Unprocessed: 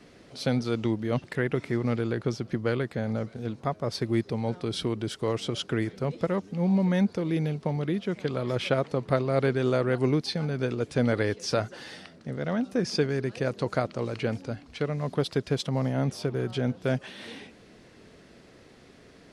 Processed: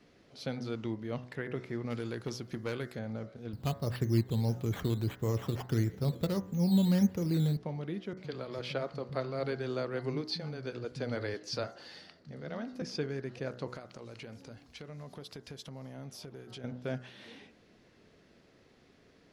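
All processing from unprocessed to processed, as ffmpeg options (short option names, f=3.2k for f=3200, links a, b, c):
-filter_complex "[0:a]asettb=1/sr,asplit=3[a][b][c];[a]atrim=end=1.904[d];[b]atrim=start=1.9:end=2.99,asetpts=PTS-STARTPTS,afade=t=in:d=0.004:c=qsin,afade=t=out:st=1.086:d=0.004:c=qsin,aemphasis=mode=production:type=75kf,aeval=exprs='0.141*(abs(mod(val(0)/0.141+3,4)-2)-1)':c=same[e];[c]atrim=start=2.986[f];[d][e]acrossfade=d=0.004:c1=hsin:c2=qsin[g];[g][f]acrossfade=d=0.004:c1=qsin:c2=hsin,asettb=1/sr,asplit=3[h][i][j];[h]atrim=end=3.534[k];[i]atrim=start=3.53:end=7.57,asetpts=PTS-STARTPTS,afade=t=in:d=0.004:c=qsin,afade=t=out:st=4.036:d=0.004:c=qsin,equalizer=f=75:t=o:w=2.7:g=15,acrusher=samples=9:mix=1:aa=0.000001:lfo=1:lforange=5.4:lforate=1.6[l];[j]atrim=start=7.566[m];[k][l]acrossfade=d=0.004:c1=hsin:c2=qsin[n];[n][m]acrossfade=d=0.004:c1=qsin:c2=hsin,asettb=1/sr,asplit=3[o][p][q];[o]atrim=end=8.134[r];[p]atrim=start=8.13:end=12.82,asetpts=PTS-STARTPTS,afade=t=in:d=0.004:c=qsin,afade=t=out:st=4.686:d=0.004:c=qsin,equalizer=f=4.5k:t=o:w=0.24:g=9,acrossover=split=190[s][t];[t]adelay=40[u];[s][u]amix=inputs=2:normalize=0,atrim=end_sample=206829[v];[q]atrim=start=12.816[w];[r][v]acrossfade=d=0.004:c1=hsin:c2=qsin[x];[x][w]acrossfade=d=0.004:c1=qsin:c2=hsin,asettb=1/sr,asplit=3[y][z][aa];[y]atrim=end=13.754[ab];[z]atrim=start=13.75:end=16.64,asetpts=PTS-STARTPTS,afade=t=in:d=0.004:c=qsin,afade=t=out:st=2.886:d=0.004:c=qsin,aemphasis=mode=production:type=50kf,acompressor=threshold=-33dB:ratio=5:attack=3.2:release=140:knee=1:detection=peak[ac];[aa]atrim=start=16.636[ad];[ab][ac]acrossfade=d=0.004:c1=hsin:c2=qsin[ae];[ae][ad]acrossfade=d=0.004:c1=qsin:c2=hsin,equalizer=f=8.8k:t=o:w=0.38:g=-8.5,bandreject=f=62.15:t=h:w=4,bandreject=f=124.3:t=h:w=4,bandreject=f=186.45:t=h:w=4,bandreject=f=248.6:t=h:w=4,bandreject=f=310.75:t=h:w=4,bandreject=f=372.9:t=h:w=4,bandreject=f=435.05:t=h:w=4,bandreject=f=497.2:t=h:w=4,bandreject=f=559.35:t=h:w=4,bandreject=f=621.5:t=h:w=4,bandreject=f=683.65:t=h:w=4,bandreject=f=745.8:t=h:w=4,bandreject=f=807.95:t=h:w=4,bandreject=f=870.1:t=h:w=4,bandreject=f=932.25:t=h:w=4,bandreject=f=994.4:t=h:w=4,bandreject=f=1.05655k:t=h:w=4,bandreject=f=1.1187k:t=h:w=4,bandreject=f=1.18085k:t=h:w=4,bandreject=f=1.243k:t=h:w=4,bandreject=f=1.30515k:t=h:w=4,bandreject=f=1.3673k:t=h:w=4,bandreject=f=1.42945k:t=h:w=4,bandreject=f=1.4916k:t=h:w=4,bandreject=f=1.55375k:t=h:w=4,bandreject=f=1.6159k:t=h:w=4,bandreject=f=1.67805k:t=h:w=4,bandreject=f=1.7402k:t=h:w=4,bandreject=f=1.80235k:t=h:w=4,bandreject=f=1.8645k:t=h:w=4,bandreject=f=1.92665k:t=h:w=4,bandreject=f=1.9888k:t=h:w=4,bandreject=f=2.05095k:t=h:w=4,bandreject=f=2.1131k:t=h:w=4,volume=-9dB"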